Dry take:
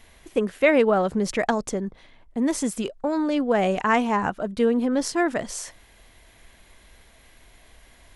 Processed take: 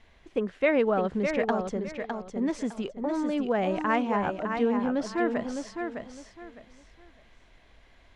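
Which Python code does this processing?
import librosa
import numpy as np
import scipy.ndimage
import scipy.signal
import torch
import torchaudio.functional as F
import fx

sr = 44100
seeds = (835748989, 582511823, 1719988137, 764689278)

y = fx.air_absorb(x, sr, metres=130.0)
y = fx.echo_feedback(y, sr, ms=608, feedback_pct=25, wet_db=-6.0)
y = y * librosa.db_to_amplitude(-5.0)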